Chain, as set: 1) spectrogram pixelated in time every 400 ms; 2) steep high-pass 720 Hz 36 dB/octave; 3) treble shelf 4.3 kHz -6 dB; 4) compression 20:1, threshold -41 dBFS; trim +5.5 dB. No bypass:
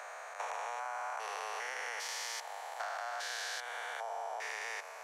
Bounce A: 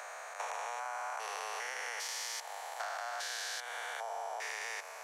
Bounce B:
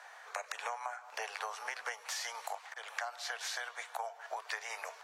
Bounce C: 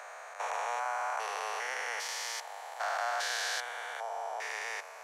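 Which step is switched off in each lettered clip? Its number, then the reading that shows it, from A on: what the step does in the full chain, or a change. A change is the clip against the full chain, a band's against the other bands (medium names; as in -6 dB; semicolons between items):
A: 3, 8 kHz band +3.0 dB; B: 1, 500 Hz band -1.5 dB; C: 4, mean gain reduction 3.0 dB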